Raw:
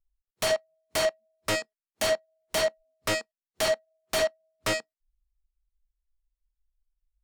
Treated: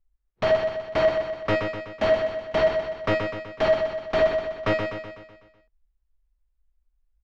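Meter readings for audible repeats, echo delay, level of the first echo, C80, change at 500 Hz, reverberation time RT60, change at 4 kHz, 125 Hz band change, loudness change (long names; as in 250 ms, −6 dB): 6, 125 ms, −6.0 dB, no reverb audible, +7.0 dB, no reverb audible, −4.5 dB, +9.0 dB, +4.5 dB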